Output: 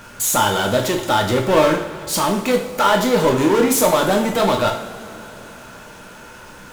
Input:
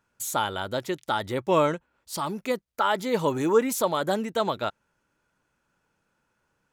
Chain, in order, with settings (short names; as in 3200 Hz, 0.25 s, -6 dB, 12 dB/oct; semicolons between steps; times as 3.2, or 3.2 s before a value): power-law curve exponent 0.5; two-slope reverb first 0.56 s, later 4.1 s, from -19 dB, DRR 1 dB